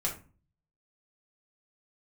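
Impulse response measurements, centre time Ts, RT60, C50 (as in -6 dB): 20 ms, 0.35 s, 9.0 dB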